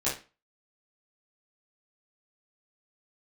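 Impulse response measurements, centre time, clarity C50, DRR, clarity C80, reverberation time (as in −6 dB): 32 ms, 5.5 dB, −10.5 dB, 13.5 dB, 0.30 s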